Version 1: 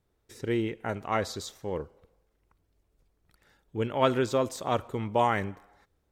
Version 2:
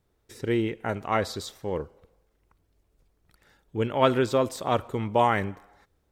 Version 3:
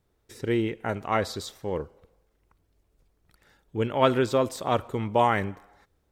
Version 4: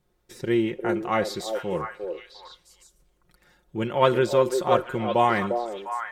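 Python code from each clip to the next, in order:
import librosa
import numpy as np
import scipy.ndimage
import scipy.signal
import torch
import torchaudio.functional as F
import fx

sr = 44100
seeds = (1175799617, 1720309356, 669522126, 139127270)

y1 = fx.dynamic_eq(x, sr, hz=6500.0, q=3.4, threshold_db=-58.0, ratio=4.0, max_db=-5)
y1 = y1 * librosa.db_to_amplitude(3.0)
y2 = y1
y3 = y2 + 0.64 * np.pad(y2, (int(5.6 * sr / 1000.0), 0))[:len(y2)]
y3 = fx.echo_stepped(y3, sr, ms=351, hz=480.0, octaves=1.4, feedback_pct=70, wet_db=-2.5)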